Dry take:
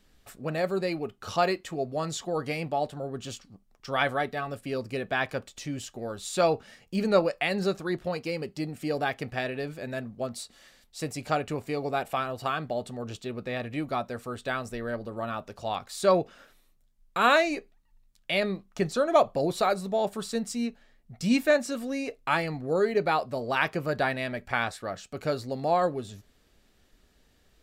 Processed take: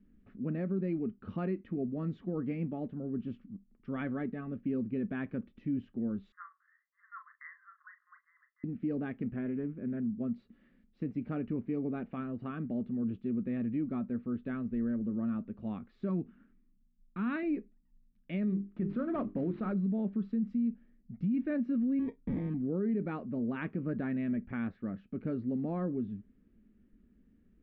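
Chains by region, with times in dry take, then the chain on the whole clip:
6.32–8.64 brick-wall FIR band-pass 1000–2100 Hz + doubler 38 ms -9 dB
9.36–10.21 air absorption 310 m + Doppler distortion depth 0.16 ms
16.09–17.43 bell 530 Hz -13 dB 0.64 oct + mismatched tape noise reduction decoder only
18.45–19.72 CVSD 32 kbps + notches 50/100/150/200/250/300/350/400 Hz + dynamic EQ 1200 Hz, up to +6 dB, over -38 dBFS, Q 1.3
21.99–22.54 air absorption 380 m + sample-rate reducer 1400 Hz
whole clip: EQ curve 150 Hz 0 dB, 210 Hz +14 dB, 750 Hz -18 dB, 1300 Hz -12 dB; limiter -22.5 dBFS; LPF 2400 Hz 24 dB/oct; gain -3 dB

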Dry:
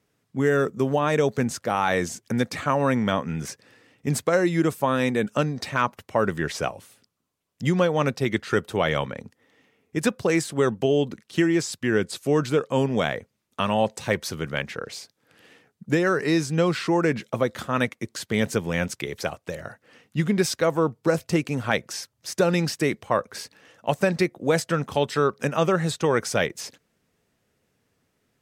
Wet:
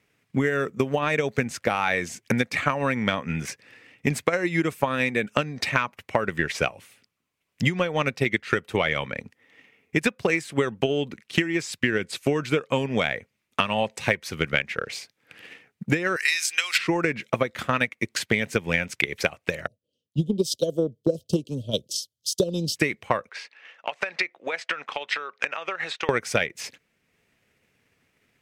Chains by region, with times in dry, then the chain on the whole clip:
16.16–16.78 HPF 1500 Hz + tilt +4 dB/oct
19.67–22.76 Chebyshev band-stop 620–3100 Hz, order 5 + three-band expander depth 70%
23.29–26.09 BPF 710–4000 Hz + compressor 12:1, threshold -31 dBFS
whole clip: bell 2300 Hz +11 dB 0.91 oct; transient shaper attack +8 dB, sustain -3 dB; compressor, threshold -19 dBFS

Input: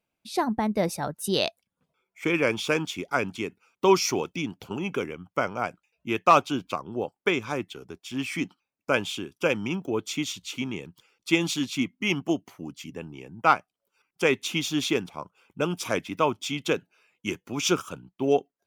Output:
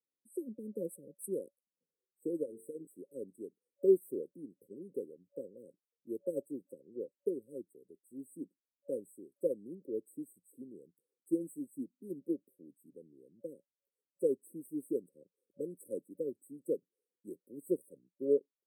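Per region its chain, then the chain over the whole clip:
2.43–2.87 notches 50/100/150/200/250/300/350/400/450 Hz + compressor 4:1, threshold -25 dBFS
whole clip: HPF 320 Hz 12 dB/oct; FFT band-reject 570–7800 Hz; upward expander 1.5:1, over -38 dBFS; gain -2.5 dB

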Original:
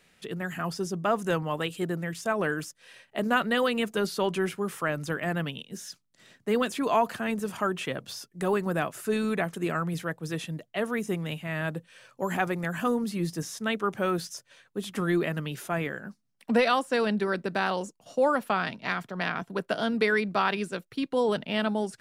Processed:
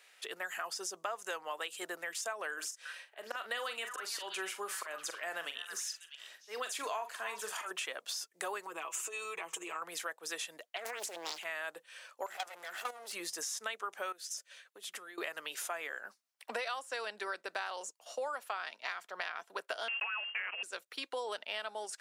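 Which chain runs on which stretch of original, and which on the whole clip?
2.53–7.71 auto swell 0.246 s + doubler 42 ms -10 dB + delay with a stepping band-pass 0.323 s, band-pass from 1400 Hz, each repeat 1.4 oct, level -9 dB
8.66–9.82 ripple EQ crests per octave 0.71, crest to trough 11 dB + compressor 8:1, threshold -33 dBFS + comb 6.2 ms, depth 77%
10.76–11.44 negative-ratio compressor -34 dBFS + Doppler distortion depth 1 ms
12.26–13.13 minimum comb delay 1.5 ms + level quantiser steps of 14 dB
14.12–15.18 bell 940 Hz -6.5 dB 0.81 oct + compressor 8:1, threshold -40 dBFS
19.88–20.63 block floating point 3-bit + inverted band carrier 3000 Hz
whole clip: Bessel high-pass 760 Hz, order 4; dynamic EQ 7100 Hz, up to +6 dB, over -54 dBFS, Q 1.4; compressor 6:1, threshold -38 dBFS; gain +2 dB

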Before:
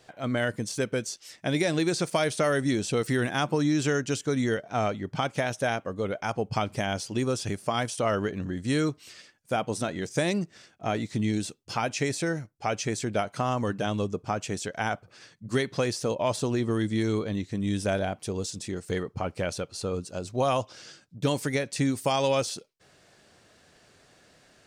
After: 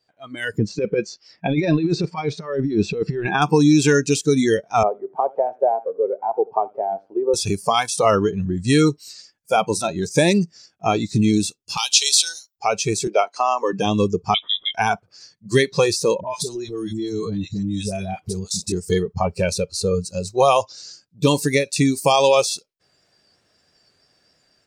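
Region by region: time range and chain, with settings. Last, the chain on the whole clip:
0.58–3.42 LPF 2400 Hz + negative-ratio compressor -28 dBFS, ratio -0.5
4.83–7.34 Butterworth band-pass 550 Hz, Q 0.86 + feedback echo 82 ms, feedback 30%, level -16.5 dB
11.77–12.56 HPF 1100 Hz + resonant high shelf 2700 Hz +9.5 dB, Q 3
13.07–13.73 HPF 300 Hz 24 dB/oct + air absorption 54 m
14.34–14.74 three-band isolator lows -12 dB, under 180 Hz, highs -24 dB, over 2500 Hz + inverted band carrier 3700 Hz
16.2–18.72 dispersion highs, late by 67 ms, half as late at 680 Hz + compressor 8:1, threshold -29 dBFS
whole clip: spectral noise reduction 18 dB; AGC gain up to 11.5 dB

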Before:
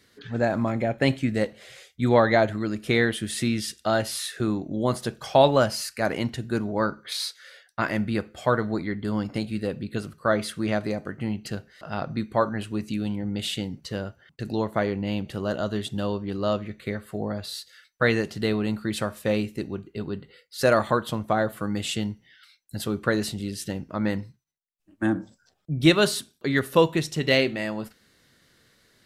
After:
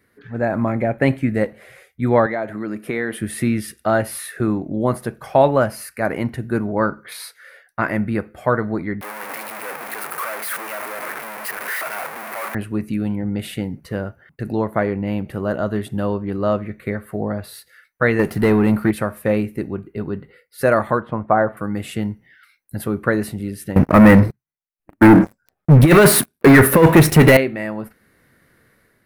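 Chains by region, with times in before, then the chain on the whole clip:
2.26–3.2 HPF 180 Hz + compressor 2.5:1, threshold -26 dBFS
9.01–12.55 infinite clipping + HPF 780 Hz
18.19–18.91 high shelf 10000 Hz +5 dB + sample leveller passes 2
21–21.57 LPF 2100 Hz + dynamic EQ 930 Hz, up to +6 dB, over -37 dBFS, Q 0.72
23.76–27.37 negative-ratio compressor -21 dBFS, ratio -0.5 + sample leveller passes 5
whole clip: band shelf 4800 Hz -13.5 dB; AGC gain up to 6 dB

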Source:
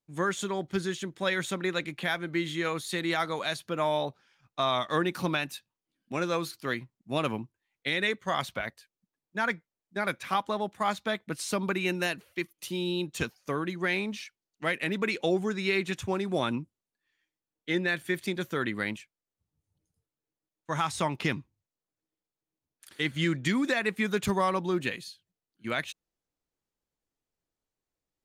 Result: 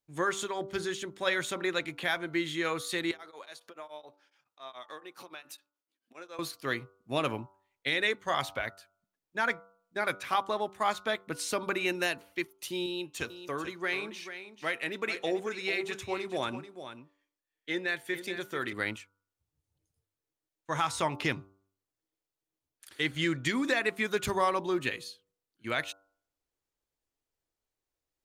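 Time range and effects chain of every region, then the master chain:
3.11–6.39 compressor, threshold -39 dBFS + HPF 320 Hz + beating tremolo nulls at 7.1 Hz
12.86–18.73 low shelf 210 Hz -5 dB + resonator 190 Hz, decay 0.3 s, mix 30% + echo 0.438 s -11 dB
whole clip: bell 190 Hz -10.5 dB 0.51 oct; de-hum 97.15 Hz, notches 15

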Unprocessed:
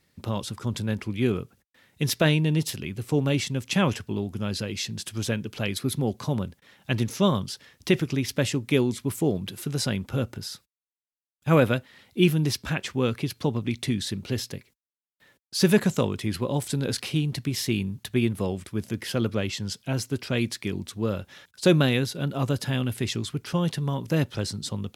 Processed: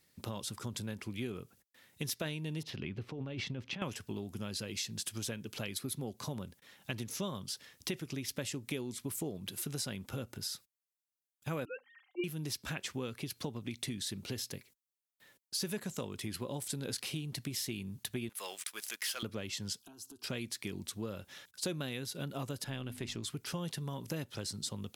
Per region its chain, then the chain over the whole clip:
2.63–3.82 negative-ratio compressor -29 dBFS + air absorption 270 m
11.65–12.24 sine-wave speech + notches 50/100/150/200/250 Hz + comb 3.8 ms, depth 43%
18.29–19.23 HPF 1300 Hz + sample leveller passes 2
19.79–20.24 compressor 20:1, threshold -39 dBFS + fixed phaser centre 550 Hz, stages 6
22.64–23.23 half-wave gain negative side -3 dB + LPF 3800 Hz 6 dB/oct + notches 50/100/150/200/250 Hz
whole clip: high shelf 5100 Hz +9 dB; compressor 6:1, threshold -29 dBFS; low shelf 120 Hz -5 dB; gain -5.5 dB

